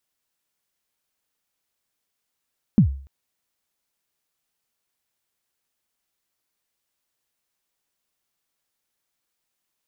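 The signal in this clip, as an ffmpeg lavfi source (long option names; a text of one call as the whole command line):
ffmpeg -f lavfi -i "aevalsrc='0.422*pow(10,-3*t/0.46)*sin(2*PI*(240*0.097/log(68/240)*(exp(log(68/240)*min(t,0.097)/0.097)-1)+68*max(t-0.097,0)))':duration=0.29:sample_rate=44100" out.wav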